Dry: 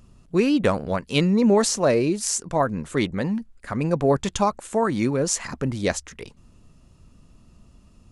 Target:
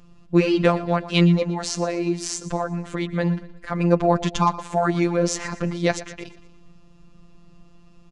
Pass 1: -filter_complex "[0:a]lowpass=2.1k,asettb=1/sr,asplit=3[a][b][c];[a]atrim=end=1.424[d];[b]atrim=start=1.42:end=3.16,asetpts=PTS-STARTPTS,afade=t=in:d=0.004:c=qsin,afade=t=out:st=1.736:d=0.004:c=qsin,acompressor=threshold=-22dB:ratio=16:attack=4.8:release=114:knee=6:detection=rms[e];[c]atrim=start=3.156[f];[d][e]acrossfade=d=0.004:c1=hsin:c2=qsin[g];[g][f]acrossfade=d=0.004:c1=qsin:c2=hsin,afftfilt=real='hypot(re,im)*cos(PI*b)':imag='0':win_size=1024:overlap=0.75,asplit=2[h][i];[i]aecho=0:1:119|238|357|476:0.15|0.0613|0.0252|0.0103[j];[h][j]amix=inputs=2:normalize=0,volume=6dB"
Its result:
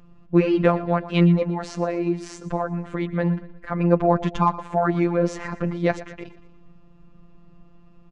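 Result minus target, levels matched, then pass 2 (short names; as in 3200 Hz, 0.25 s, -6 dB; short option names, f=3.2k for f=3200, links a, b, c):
4000 Hz band -8.5 dB
-filter_complex "[0:a]lowpass=5.1k,asettb=1/sr,asplit=3[a][b][c];[a]atrim=end=1.424[d];[b]atrim=start=1.42:end=3.16,asetpts=PTS-STARTPTS,afade=t=in:d=0.004:c=qsin,afade=t=out:st=1.736:d=0.004:c=qsin,acompressor=threshold=-22dB:ratio=16:attack=4.8:release=114:knee=6:detection=rms[e];[c]atrim=start=3.156[f];[d][e]acrossfade=d=0.004:c1=hsin:c2=qsin[g];[g][f]acrossfade=d=0.004:c1=qsin:c2=hsin,afftfilt=real='hypot(re,im)*cos(PI*b)':imag='0':win_size=1024:overlap=0.75,asplit=2[h][i];[i]aecho=0:1:119|238|357|476:0.15|0.0613|0.0252|0.0103[j];[h][j]amix=inputs=2:normalize=0,volume=6dB"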